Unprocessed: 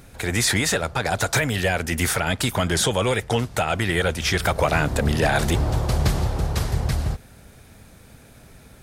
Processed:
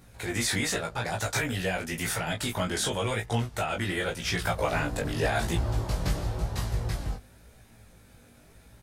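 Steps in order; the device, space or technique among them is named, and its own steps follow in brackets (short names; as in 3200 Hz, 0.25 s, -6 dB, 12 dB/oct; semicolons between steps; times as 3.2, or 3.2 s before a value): double-tracked vocal (doubler 17 ms -4.5 dB; chorus 0.91 Hz, delay 18 ms, depth 3 ms); gain -5.5 dB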